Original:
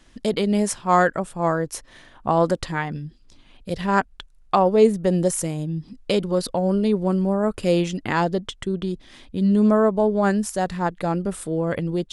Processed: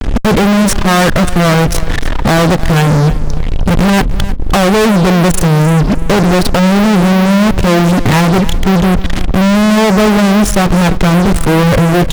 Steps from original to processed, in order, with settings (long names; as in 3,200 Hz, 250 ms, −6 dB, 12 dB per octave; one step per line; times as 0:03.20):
RIAA equalisation playback
in parallel at +1.5 dB: downward compressor, threshold −25 dBFS, peak gain reduction 18 dB
on the sum: fuzz pedal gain 38 dB, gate −39 dBFS
repeating echo 306 ms, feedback 25%, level −15 dB
level +5.5 dB